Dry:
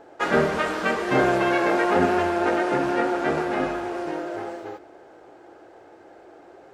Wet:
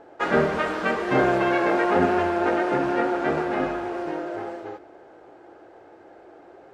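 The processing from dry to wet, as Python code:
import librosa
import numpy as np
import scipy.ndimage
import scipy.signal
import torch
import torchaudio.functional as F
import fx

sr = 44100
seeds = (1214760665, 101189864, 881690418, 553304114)

y = fx.high_shelf(x, sr, hz=5100.0, db=-9.5)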